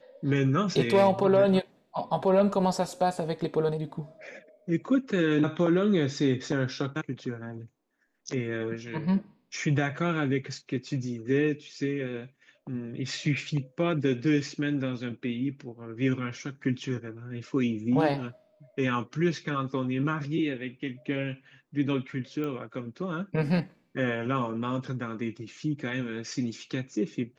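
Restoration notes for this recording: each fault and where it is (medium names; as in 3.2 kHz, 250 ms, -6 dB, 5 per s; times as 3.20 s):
22.44 s: pop -23 dBFS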